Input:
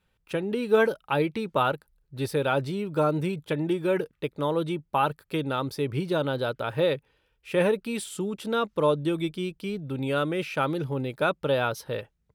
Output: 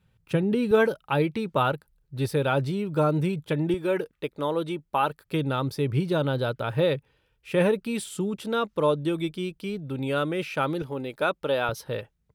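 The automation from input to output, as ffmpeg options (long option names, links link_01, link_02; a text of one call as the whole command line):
ffmpeg -i in.wav -af "asetnsamples=nb_out_samples=441:pad=0,asendcmd='0.71 equalizer g 5;3.74 equalizer g -5;5.25 equalizer g 6;8.44 equalizer g 0;10.82 equalizer g -8;11.69 equalizer g 2',equalizer=frequency=120:width_type=o:width=1.5:gain=15" out.wav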